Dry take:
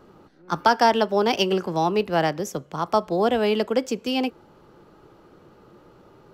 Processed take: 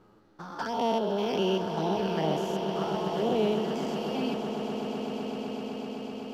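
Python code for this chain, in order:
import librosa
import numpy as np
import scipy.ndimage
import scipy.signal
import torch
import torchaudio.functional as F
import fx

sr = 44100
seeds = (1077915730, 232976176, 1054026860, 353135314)

y = fx.spec_steps(x, sr, hold_ms=200)
y = fx.env_flanger(y, sr, rest_ms=10.7, full_db=-21.0)
y = fx.echo_swell(y, sr, ms=127, loudest=8, wet_db=-12.5)
y = y * librosa.db_to_amplitude(-3.0)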